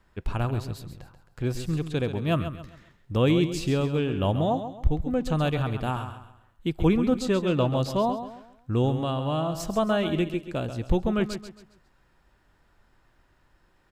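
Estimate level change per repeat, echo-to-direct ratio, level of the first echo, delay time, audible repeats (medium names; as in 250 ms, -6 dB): -9.0 dB, -9.5 dB, -10.0 dB, 135 ms, 3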